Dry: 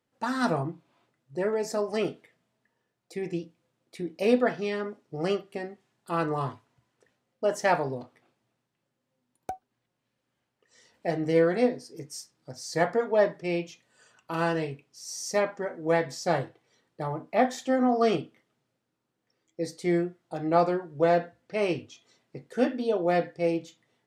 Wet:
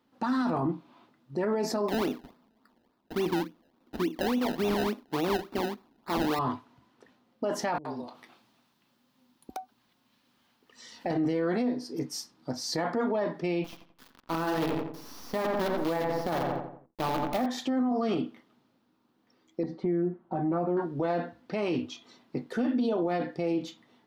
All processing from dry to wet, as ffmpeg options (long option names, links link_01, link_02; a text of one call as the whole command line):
ffmpeg -i in.wav -filter_complex "[0:a]asettb=1/sr,asplit=3[link_01][link_02][link_03];[link_01]atrim=end=1.884[link_04];[link_02]atrim=start=1.88:end=6.39,asetpts=PTS-STARTPTS,afade=type=in:duration=0.004:curve=qsin,afade=type=out:start_time=4.506:duration=0.004:curve=qsin,highpass=180,acrusher=samples=27:mix=1:aa=0.000001:lfo=1:lforange=27:lforate=3.5[link_05];[link_03]atrim=start=6.386[link_06];[link_04][link_05]acrossfade=duration=0.004:curve1=hsin:curve2=qsin[link_07];[link_07][link_06]acrossfade=duration=0.004:curve1=qsin:curve2=hsin,asettb=1/sr,asplit=3[link_08][link_09][link_10];[link_08]atrim=end=7.784[link_11];[link_09]atrim=start=7.78:end=11.06,asetpts=PTS-STARTPTS,afade=type=in:duration=0.004:curve=qsin,afade=type=out:start_time=3.276:duration=0.004:curve=qsin,highshelf=frequency=2200:gain=10,acompressor=threshold=-51dB:ratio=2:attack=3.2:release=140:knee=1:detection=peak,acrossover=split=380[link_12][link_13];[link_13]adelay=70[link_14];[link_12][link_14]amix=inputs=2:normalize=0,atrim=end_sample=144648[link_15];[link_10]atrim=start=11.056[link_16];[link_11][link_15]acrossfade=duration=0.004:curve1=hsin:curve2=qsin[link_17];[link_17][link_16]acrossfade=duration=0.004:curve1=qsin:curve2=hsin,asettb=1/sr,asplit=3[link_18][link_19][link_20];[link_18]atrim=end=13.644[link_21];[link_19]atrim=start=13.64:end=17.46,asetpts=PTS-STARTPTS,afade=type=in:duration=0.004:curve=qsin,afade=type=out:start_time=3.816:duration=0.004:curve=qsin,acrossover=split=3400[link_22][link_23];[link_23]acompressor=threshold=-54dB:ratio=4:attack=1:release=60[link_24];[link_22][link_24]amix=inputs=2:normalize=0,acrusher=bits=6:dc=4:mix=0:aa=0.000001,asplit=2[link_25][link_26];[link_26]adelay=86,lowpass=frequency=1900:poles=1,volume=-6dB,asplit=2[link_27][link_28];[link_28]adelay=86,lowpass=frequency=1900:poles=1,volume=0.44,asplit=2[link_29][link_30];[link_30]adelay=86,lowpass=frequency=1900:poles=1,volume=0.44,asplit=2[link_31][link_32];[link_32]adelay=86,lowpass=frequency=1900:poles=1,volume=0.44,asplit=2[link_33][link_34];[link_34]adelay=86,lowpass=frequency=1900:poles=1,volume=0.44[link_35];[link_25][link_27][link_29][link_31][link_33][link_35]amix=inputs=6:normalize=0,atrim=end_sample=168462[link_36];[link_20]atrim=start=17.456[link_37];[link_21][link_36]acrossfade=duration=0.004:curve1=hsin:curve2=qsin[link_38];[link_38][link_37]acrossfade=duration=0.004:curve1=qsin:curve2=hsin,asettb=1/sr,asplit=3[link_39][link_40][link_41];[link_39]atrim=end=19.634[link_42];[link_40]atrim=start=19.63:end=20.77,asetpts=PTS-STARTPTS,afade=type=in:duration=0.004:curve=qsin,afade=type=out:start_time=1.136:duration=0.004:curve=qsin,lowpass=1200,acompressor=threshold=-38dB:ratio=2.5:attack=3.2:release=140:knee=1:detection=peak,aecho=1:1:5.3:0.81,atrim=end_sample=50274[link_43];[link_41]atrim=start=20.766[link_44];[link_42][link_43]acrossfade=duration=0.004:curve1=hsin:curve2=qsin[link_45];[link_45][link_44]acrossfade=duration=0.004:curve1=qsin:curve2=hsin,equalizer=frequency=125:width_type=o:width=1:gain=-6,equalizer=frequency=250:width_type=o:width=1:gain=10,equalizer=frequency=500:width_type=o:width=1:gain=-4,equalizer=frequency=1000:width_type=o:width=1:gain=6,equalizer=frequency=2000:width_type=o:width=1:gain=-3,equalizer=frequency=4000:width_type=o:width=1:gain=4,equalizer=frequency=8000:width_type=o:width=1:gain=-10,acompressor=threshold=-25dB:ratio=6,alimiter=level_in=4dB:limit=-24dB:level=0:latency=1:release=19,volume=-4dB,volume=7dB" out.wav